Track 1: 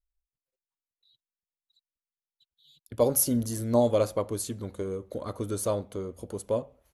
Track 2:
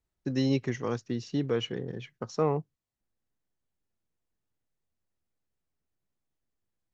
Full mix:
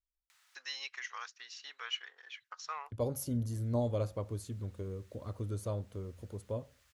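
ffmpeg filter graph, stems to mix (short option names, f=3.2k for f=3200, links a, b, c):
-filter_complex "[0:a]equalizer=f=96:t=o:w=1.4:g=12.5,volume=-12dB,asplit=2[a][b];[1:a]highpass=f=1.2k:w=0.5412,highpass=f=1.2k:w=1.3066,acompressor=mode=upward:threshold=-46dB:ratio=2.5,adelay=300,volume=0.5dB[c];[b]apad=whole_len=318974[d];[c][d]sidechaincompress=threshold=-36dB:ratio=8:attack=16:release=423[e];[a][e]amix=inputs=2:normalize=0,highshelf=f=9.2k:g=-9.5"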